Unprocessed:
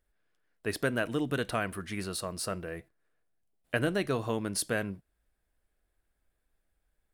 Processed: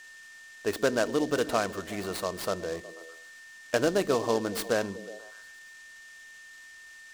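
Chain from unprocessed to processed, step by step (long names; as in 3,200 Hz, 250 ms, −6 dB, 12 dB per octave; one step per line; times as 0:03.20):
octave-band graphic EQ 125/500/1,000/2,000/4,000/8,000 Hz −8/+5/+5/−5/+4/−8 dB
on a send: echo through a band-pass that steps 122 ms, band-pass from 210 Hz, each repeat 0.7 octaves, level −10 dB
on the sum: noise reduction from a noise print of the clip's start 7 dB
steady tone 1,800 Hz −48 dBFS
short delay modulated by noise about 4,500 Hz, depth 0.038 ms
level +1.5 dB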